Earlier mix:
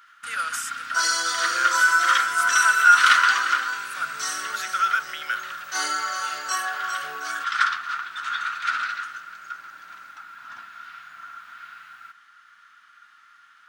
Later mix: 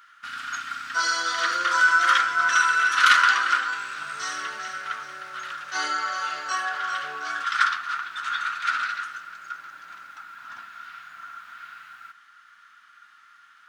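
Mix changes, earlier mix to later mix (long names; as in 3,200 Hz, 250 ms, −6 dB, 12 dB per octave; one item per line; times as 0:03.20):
speech: muted
second sound: add low-pass filter 4,500 Hz 12 dB per octave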